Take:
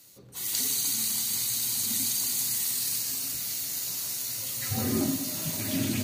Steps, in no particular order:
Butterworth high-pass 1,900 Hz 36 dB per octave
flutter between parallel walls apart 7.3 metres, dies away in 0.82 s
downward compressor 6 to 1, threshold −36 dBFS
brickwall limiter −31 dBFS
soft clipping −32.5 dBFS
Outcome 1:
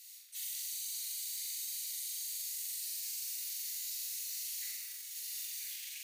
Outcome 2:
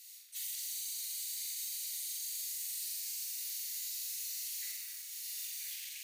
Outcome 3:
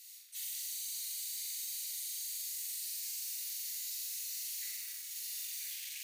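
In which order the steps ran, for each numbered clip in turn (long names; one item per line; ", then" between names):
brickwall limiter, then soft clipping, then flutter between parallel walls, then downward compressor, then Butterworth high-pass
flutter between parallel walls, then downward compressor, then soft clipping, then Butterworth high-pass, then brickwall limiter
brickwall limiter, then flutter between parallel walls, then soft clipping, then Butterworth high-pass, then downward compressor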